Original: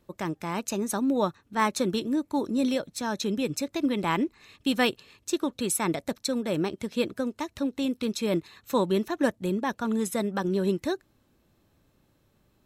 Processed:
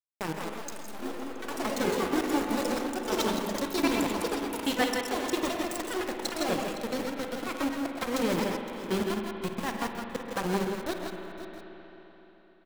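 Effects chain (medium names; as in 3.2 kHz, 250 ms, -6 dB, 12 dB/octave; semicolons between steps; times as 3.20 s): low-pass 8.1 kHz 24 dB/octave; peaking EQ 88 Hz +8.5 dB 0.8 oct; hum notches 50/100/150/200/250/300/350/400 Hz; in parallel at -2 dB: compression, threshold -30 dBFS, peak gain reduction 11.5 dB; on the sum: flange 0.37 Hz, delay 8.2 ms, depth 9.7 ms, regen -74%; trance gate "..xxx..x.xxx..x" 155 bpm; small samples zeroed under -28 dBFS; on a send: multi-tap echo 51/134/158/168/513/672 ms -15.5/-13.5/-9/-7/-15.5/-19.5 dB; on the sum: ever faster or slower copies 249 ms, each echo +5 st, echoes 2; spring tank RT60 3.7 s, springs 43/57 ms, chirp 75 ms, DRR 5.5 dB; transformer saturation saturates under 190 Hz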